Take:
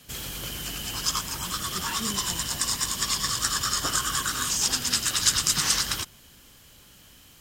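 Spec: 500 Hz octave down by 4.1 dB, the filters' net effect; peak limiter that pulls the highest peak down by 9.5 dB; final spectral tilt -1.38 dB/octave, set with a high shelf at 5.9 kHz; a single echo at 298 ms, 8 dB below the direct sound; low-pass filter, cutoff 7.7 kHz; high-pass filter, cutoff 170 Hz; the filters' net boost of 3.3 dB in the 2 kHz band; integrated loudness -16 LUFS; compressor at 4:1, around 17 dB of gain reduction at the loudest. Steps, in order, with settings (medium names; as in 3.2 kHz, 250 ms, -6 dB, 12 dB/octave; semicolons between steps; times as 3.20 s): high-pass 170 Hz; low-pass 7.7 kHz; peaking EQ 500 Hz -5.5 dB; peaking EQ 2 kHz +4 dB; treble shelf 5.9 kHz +6.5 dB; compression 4:1, threshold -37 dBFS; peak limiter -26.5 dBFS; delay 298 ms -8 dB; trim +20.5 dB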